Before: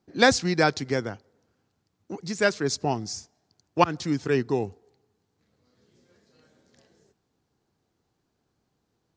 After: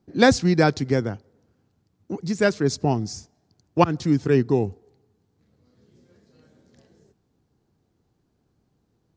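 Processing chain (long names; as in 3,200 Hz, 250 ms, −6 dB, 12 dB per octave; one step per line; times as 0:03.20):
low-shelf EQ 460 Hz +10.5 dB
level −1.5 dB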